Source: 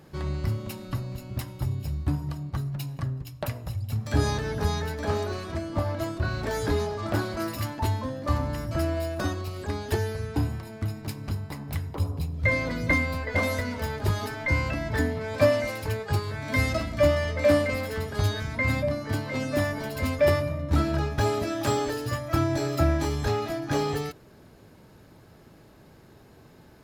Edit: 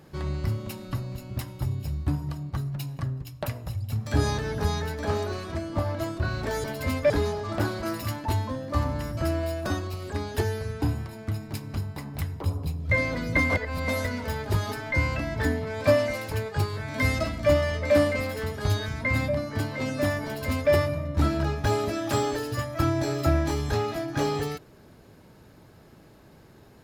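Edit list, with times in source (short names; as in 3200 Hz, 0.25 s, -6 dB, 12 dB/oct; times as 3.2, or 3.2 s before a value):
13.04–13.42 reverse
19.8–20.26 copy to 6.64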